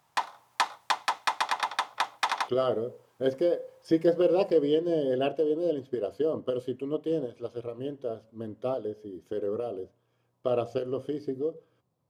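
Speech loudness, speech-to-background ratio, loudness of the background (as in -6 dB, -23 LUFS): -29.5 LUFS, 1.0 dB, -30.5 LUFS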